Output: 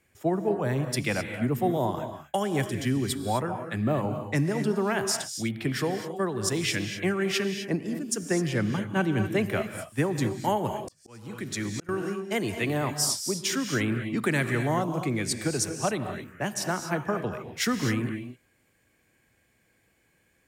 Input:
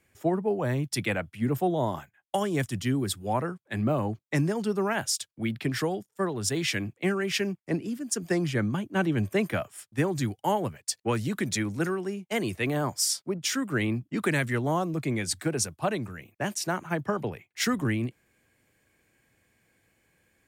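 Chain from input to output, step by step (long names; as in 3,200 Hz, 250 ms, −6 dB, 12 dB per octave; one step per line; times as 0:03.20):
reverb whose tail is shaped and stops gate 280 ms rising, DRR 7 dB
0:10.58–0:11.89: volume swells 783 ms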